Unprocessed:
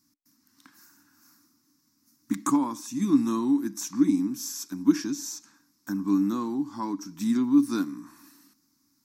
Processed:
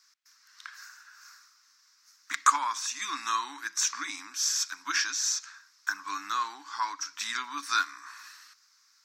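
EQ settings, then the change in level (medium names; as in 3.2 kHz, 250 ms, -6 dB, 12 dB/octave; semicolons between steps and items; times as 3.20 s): resonant high-pass 1.4 kHz, resonance Q 2.1; distance through air 160 m; tilt EQ +4.5 dB/octave; +6.5 dB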